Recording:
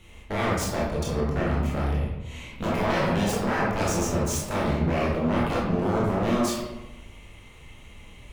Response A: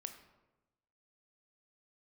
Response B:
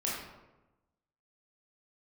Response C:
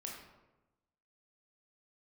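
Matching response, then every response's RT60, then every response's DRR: B; 1.1 s, 1.0 s, 1.0 s; 7.0 dB, -6.0 dB, -1.5 dB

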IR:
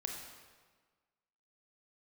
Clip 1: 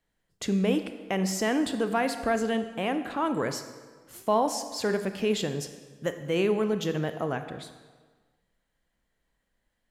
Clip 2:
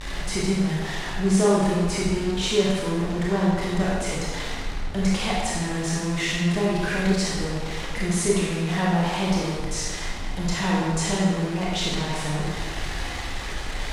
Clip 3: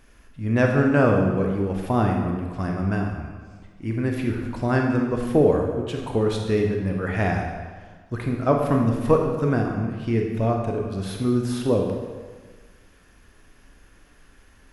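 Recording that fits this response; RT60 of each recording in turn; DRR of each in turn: 3; 1.5 s, 1.5 s, 1.5 s; 8.5 dB, -5.5 dB, 1.0 dB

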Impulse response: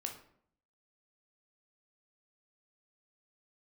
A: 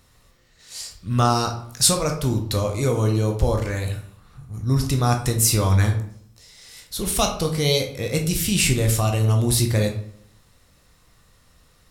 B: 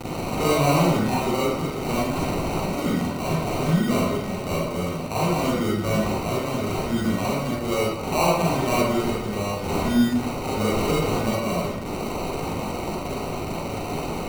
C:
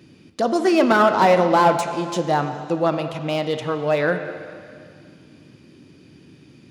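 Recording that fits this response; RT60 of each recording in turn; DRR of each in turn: A; 0.65 s, 0.95 s, 2.2 s; 3.0 dB, -7.0 dB, 7.0 dB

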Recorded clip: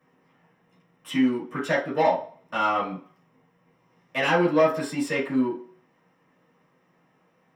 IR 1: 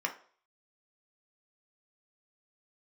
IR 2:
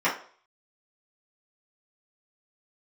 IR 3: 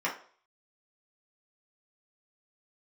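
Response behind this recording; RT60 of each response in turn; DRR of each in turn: 2; 0.45 s, 0.45 s, 0.50 s; 2.0 dB, -10.5 dB, -6.0 dB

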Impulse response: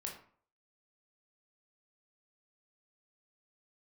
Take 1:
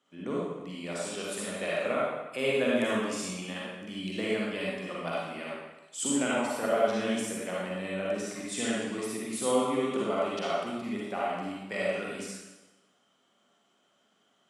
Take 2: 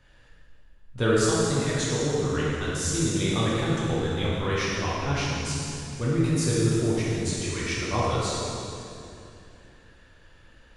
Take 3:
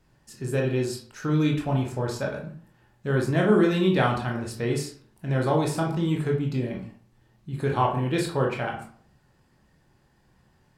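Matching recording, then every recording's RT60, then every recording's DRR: 3; 1.1 s, 2.8 s, 0.50 s; -6.0 dB, -7.5 dB, -0.5 dB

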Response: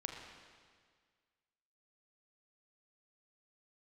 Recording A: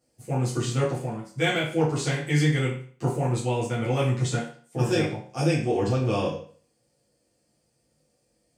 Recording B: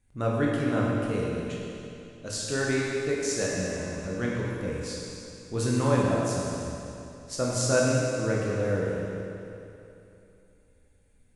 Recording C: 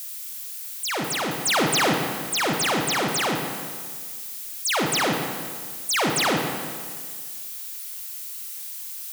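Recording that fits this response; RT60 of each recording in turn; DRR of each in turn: C; 0.45 s, 2.9 s, 1.8 s; -8.5 dB, -4.5 dB, 1.5 dB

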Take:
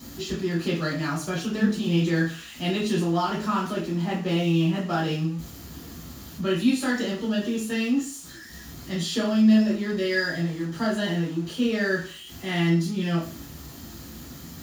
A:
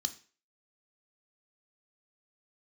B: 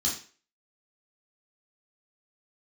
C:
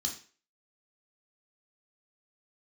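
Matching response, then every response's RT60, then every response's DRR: B; 0.40 s, 0.40 s, 0.40 s; 8.5 dB, -5.5 dB, 0.0 dB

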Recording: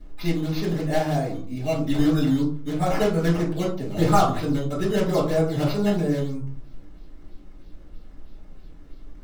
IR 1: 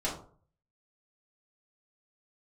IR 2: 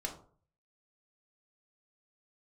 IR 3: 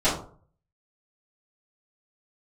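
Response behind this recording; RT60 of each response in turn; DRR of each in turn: 1; 0.50 s, 0.50 s, 0.50 s; -7.0 dB, 0.5 dB, -13.5 dB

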